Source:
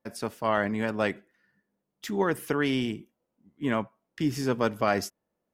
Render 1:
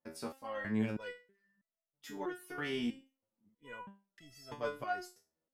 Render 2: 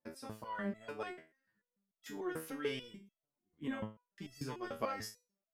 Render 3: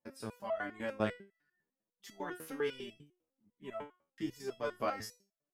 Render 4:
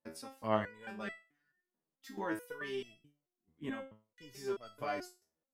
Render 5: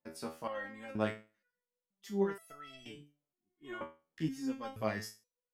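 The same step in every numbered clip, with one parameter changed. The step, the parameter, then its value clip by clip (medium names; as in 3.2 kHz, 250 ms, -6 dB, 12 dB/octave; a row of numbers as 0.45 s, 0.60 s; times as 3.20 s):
resonator arpeggio, rate: 3.1 Hz, 6.8 Hz, 10 Hz, 4.6 Hz, 2.1 Hz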